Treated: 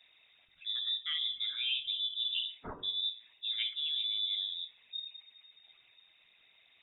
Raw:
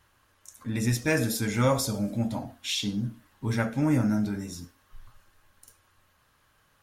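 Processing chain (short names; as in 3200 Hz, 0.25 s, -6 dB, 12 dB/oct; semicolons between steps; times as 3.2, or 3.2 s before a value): formant sharpening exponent 1.5; reverse; compressor 16:1, threshold -32 dBFS, peak gain reduction 14.5 dB; reverse; treble ducked by the level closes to 1200 Hz, closed at -32 dBFS; dynamic EQ 1200 Hz, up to +6 dB, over -56 dBFS, Q 0.94; inverted band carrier 3700 Hz; de-hum 46.56 Hz, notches 26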